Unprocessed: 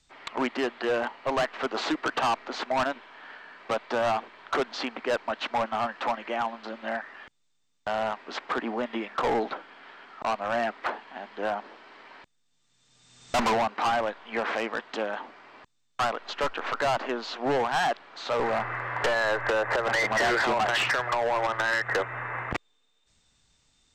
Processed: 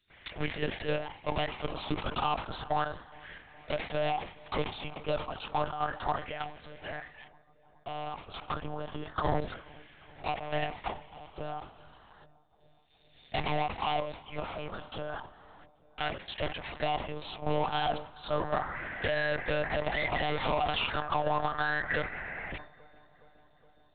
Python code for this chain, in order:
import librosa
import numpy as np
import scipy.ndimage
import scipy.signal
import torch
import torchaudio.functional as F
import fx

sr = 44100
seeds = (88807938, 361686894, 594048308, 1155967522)

p1 = fx.tilt_eq(x, sr, slope=1.5)
p2 = fx.level_steps(p1, sr, step_db=9)
p3 = fx.filter_lfo_notch(p2, sr, shape='saw_up', hz=0.32, low_hz=960.0, high_hz=2500.0, q=1.2)
p4 = fx.lpc_monotone(p3, sr, seeds[0], pitch_hz=150.0, order=10)
p5 = p4 + fx.echo_filtered(p4, sr, ms=417, feedback_pct=74, hz=1800.0, wet_db=-23.5, dry=0)
y = fx.sustainer(p5, sr, db_per_s=120.0)